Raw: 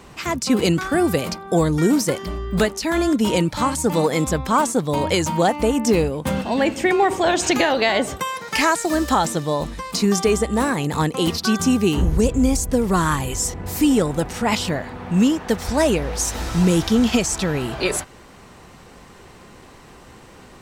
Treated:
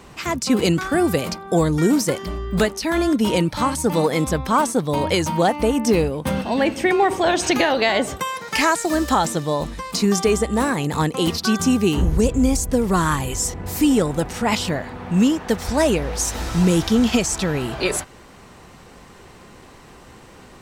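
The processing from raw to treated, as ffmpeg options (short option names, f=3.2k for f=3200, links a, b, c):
-filter_complex "[0:a]asettb=1/sr,asplit=3[a][b][c];[a]atrim=end=2.754[d];[b]atrim=start=2.75:end=7.82,asetpts=PTS-STARTPTS,afade=t=in:d=0.004:c=qsin,afade=t=out:st=5.066:d=0.004:c=qsin,bandreject=f=7.2k:w=7.3[e];[c]atrim=start=7.816[f];[d][e]acrossfade=d=0.004:c1=hsin:c2=qsin[g];[g][f]acrossfade=d=0.004:c1=qsin:c2=hsin"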